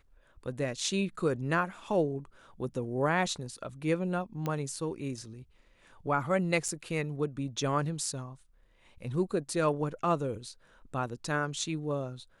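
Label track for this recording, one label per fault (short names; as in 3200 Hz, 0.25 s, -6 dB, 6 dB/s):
4.460000	4.460000	pop -20 dBFS
6.680000	6.680000	gap 5 ms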